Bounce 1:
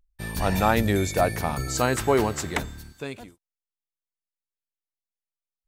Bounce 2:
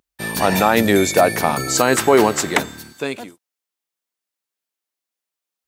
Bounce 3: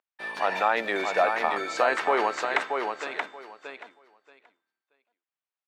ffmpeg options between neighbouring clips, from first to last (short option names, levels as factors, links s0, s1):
-af "highpass=210,alimiter=level_in=3.76:limit=0.891:release=50:level=0:latency=1,volume=0.891"
-filter_complex "[0:a]highpass=660,lowpass=2600,asplit=2[s0][s1];[s1]aecho=0:1:629|1258|1887:0.562|0.0956|0.0163[s2];[s0][s2]amix=inputs=2:normalize=0,volume=0.531"